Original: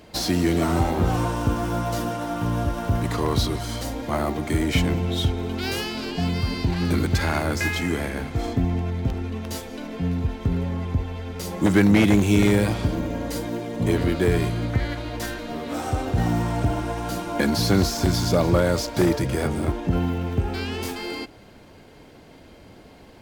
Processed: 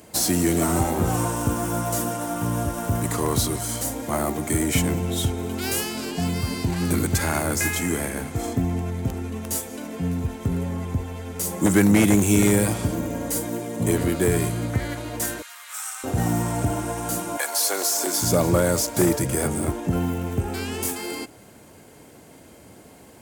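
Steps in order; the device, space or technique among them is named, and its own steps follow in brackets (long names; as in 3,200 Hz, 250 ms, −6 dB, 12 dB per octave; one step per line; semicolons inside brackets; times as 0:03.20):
0:17.36–0:18.21: high-pass filter 680 Hz → 290 Hz 24 dB per octave
budget condenser microphone (high-pass filter 78 Hz; high shelf with overshoot 6,000 Hz +11 dB, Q 1.5)
0:15.42–0:16.04: inverse Chebyshev high-pass filter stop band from 360 Hz, stop band 60 dB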